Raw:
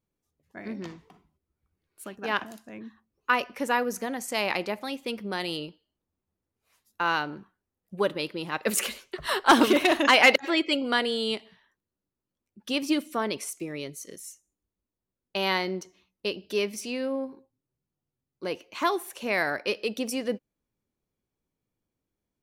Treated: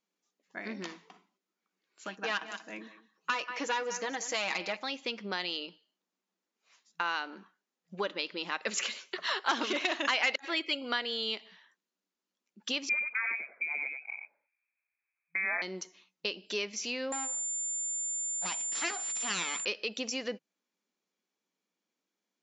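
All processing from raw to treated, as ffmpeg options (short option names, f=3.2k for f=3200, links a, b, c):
-filter_complex "[0:a]asettb=1/sr,asplit=3[a][b][c];[a]atrim=end=2.074[d];[b]atrim=start=2.07:end=4.77,asetpts=PTS-STARTPTS,afade=t=in:d=0.004:c=qsin,afade=t=out:st=2.696:d=0.004:c=qsin,aecho=1:1:6.3:0.59,atrim=end_sample=119070,aecho=1:1:185:0.158,atrim=end_sample=119070,aeval=exprs='clip(val(0),-1,0.075)':c=same[e];[c]atrim=start=4.766[f];[d][e]acrossfade=d=0.004:c1=hsin:c2=qsin[g];[g][f]acrossfade=d=0.004:c1=qsin:c2=hsin,asettb=1/sr,asplit=3[h][i][j];[h]atrim=end=12.894[k];[i]atrim=start=12.89:end=15.62,asetpts=PTS-STARTPTS,afade=t=in:d=0.004:c=qsin,afade=t=out:st=2.726:d=0.004:c=qsin,highpass=200,lowpass=f=2.3k:t=q:w=0.5098,lowpass=f=2.3k:t=q:w=0.6013,lowpass=f=2.3k:t=q:w=0.9,lowpass=f=2.3k:t=q:w=2.563,afreqshift=-2700,aecho=1:1:91:0.501,atrim=end_sample=120393[l];[j]atrim=start=15.616[m];[k][l]acrossfade=d=0.004:c1=hsin:c2=qsin[n];[n][m]acrossfade=d=0.004:c1=qsin:c2=hsin,asettb=1/sr,asplit=3[o][p][q];[o]atrim=end=17.124[r];[p]atrim=start=17.12:end=19.65,asetpts=PTS-STARTPTS,afade=t=in:d=0.004:c=qsin,afade=t=out:st=2.526:d=0.004:c=qsin,bandreject=f=50:t=h:w=6,bandreject=f=100:t=h:w=6,bandreject=f=150:t=h:w=6,bandreject=f=200:t=h:w=6,bandreject=f=250:t=h:w=6,bandreject=f=300:t=h:w=6,bandreject=f=350:t=h:w=6,bandreject=f=400:t=h:w=6,bandreject=f=450:t=h:w=6,aeval=exprs='abs(val(0))':c=same,aeval=exprs='val(0)+0.0158*sin(2*PI*7200*n/s)':c=same[s];[q]atrim=start=19.646[t];[r][s]acrossfade=d=0.004:c1=hsin:c2=qsin[u];[u][t]acrossfade=d=0.004:c1=qsin:c2=hsin,afftfilt=real='re*between(b*sr/4096,170,7400)':imag='im*between(b*sr/4096,170,7400)':win_size=4096:overlap=0.75,tiltshelf=f=750:g=-6,acompressor=threshold=-33dB:ratio=2.5"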